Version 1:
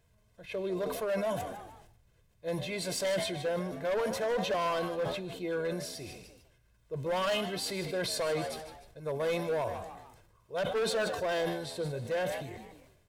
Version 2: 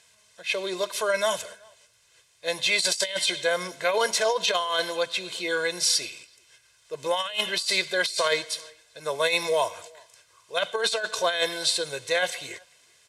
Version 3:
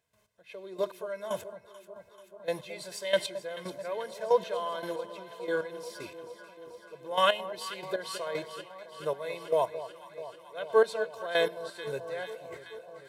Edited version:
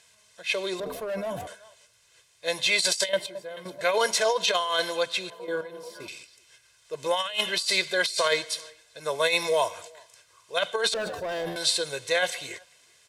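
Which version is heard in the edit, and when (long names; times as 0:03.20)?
2
0:00.80–0:01.47: punch in from 1
0:03.09–0:03.81: punch in from 3
0:05.30–0:06.08: punch in from 3
0:10.94–0:11.56: punch in from 1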